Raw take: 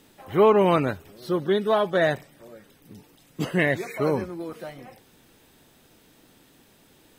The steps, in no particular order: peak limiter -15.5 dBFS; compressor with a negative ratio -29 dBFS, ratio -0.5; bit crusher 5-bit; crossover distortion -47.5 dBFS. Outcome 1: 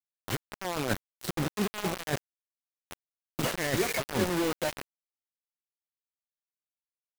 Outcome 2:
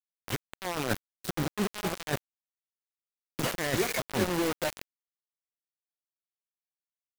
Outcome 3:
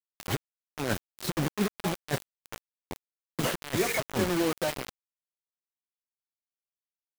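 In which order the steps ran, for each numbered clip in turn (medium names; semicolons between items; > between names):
peak limiter > compressor with a negative ratio > bit crusher > crossover distortion; peak limiter > compressor with a negative ratio > crossover distortion > bit crusher; compressor with a negative ratio > peak limiter > bit crusher > crossover distortion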